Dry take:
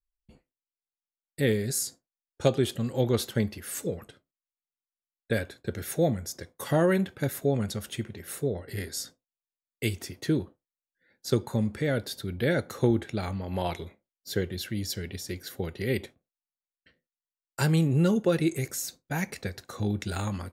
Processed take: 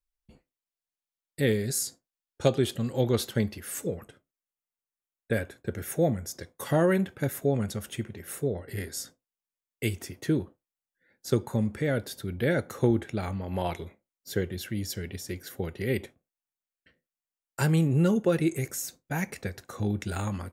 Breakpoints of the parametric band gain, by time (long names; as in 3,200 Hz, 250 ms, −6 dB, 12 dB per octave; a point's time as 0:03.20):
parametric band 4,200 Hz 0.63 octaves
0:03.52 0 dB
0:04.00 −10 dB
0:06.21 −10 dB
0:06.38 +1 dB
0:06.92 −6 dB